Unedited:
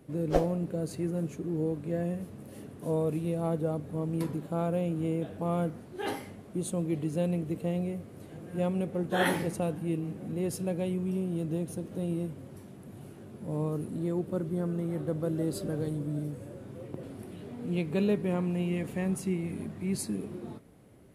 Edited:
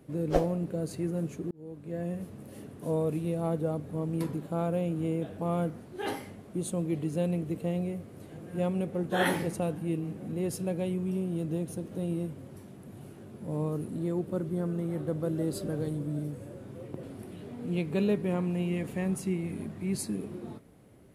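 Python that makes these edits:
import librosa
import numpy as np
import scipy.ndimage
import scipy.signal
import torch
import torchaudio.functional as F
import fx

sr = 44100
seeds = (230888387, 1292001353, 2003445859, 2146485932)

y = fx.edit(x, sr, fx.fade_in_span(start_s=1.51, length_s=0.71), tone=tone)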